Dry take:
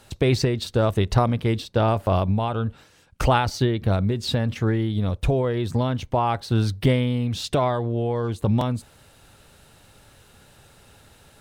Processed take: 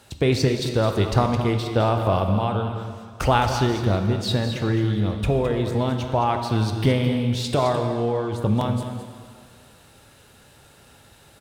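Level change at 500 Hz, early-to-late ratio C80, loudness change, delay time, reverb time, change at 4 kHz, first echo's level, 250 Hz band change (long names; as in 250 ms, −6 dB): +1.0 dB, 6.0 dB, +0.5 dB, 214 ms, 2.1 s, +1.5 dB, −10.5 dB, +1.0 dB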